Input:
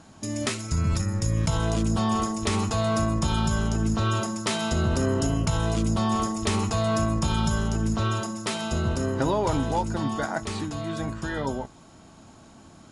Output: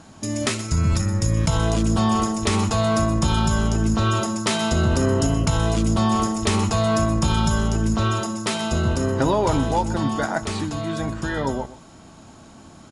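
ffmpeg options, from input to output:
ffmpeg -i in.wav -af "aecho=1:1:124:0.15,volume=4.5dB" out.wav

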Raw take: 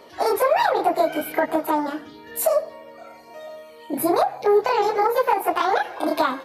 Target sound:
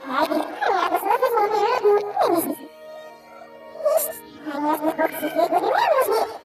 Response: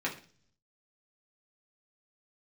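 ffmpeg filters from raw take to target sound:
-af "areverse,aecho=1:1:134:0.211"

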